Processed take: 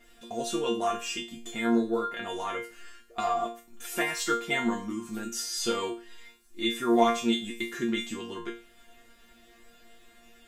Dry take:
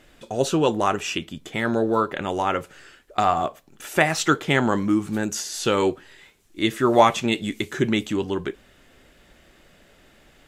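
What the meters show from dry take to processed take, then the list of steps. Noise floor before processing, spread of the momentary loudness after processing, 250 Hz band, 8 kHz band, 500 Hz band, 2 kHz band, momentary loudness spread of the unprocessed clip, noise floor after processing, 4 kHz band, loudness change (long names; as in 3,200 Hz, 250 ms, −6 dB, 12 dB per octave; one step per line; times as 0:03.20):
−56 dBFS, 13 LU, −6.0 dB, −4.5 dB, −7.5 dB, −7.0 dB, 10 LU, −58 dBFS, −4.0 dB, −7.0 dB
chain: high-shelf EQ 7,400 Hz +5 dB
in parallel at −0.5 dB: downward compressor, threshold −30 dBFS, peak gain reduction 19 dB
on the sum: resonators tuned to a chord A#3 fifth, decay 0.35 s
level +7 dB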